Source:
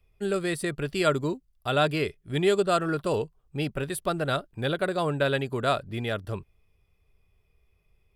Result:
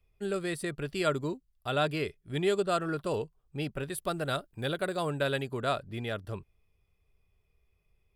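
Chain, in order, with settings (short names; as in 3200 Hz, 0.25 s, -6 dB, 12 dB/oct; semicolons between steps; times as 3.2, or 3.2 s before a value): 3.98–5.46 high shelf 6500 Hz +8.5 dB; gain -5 dB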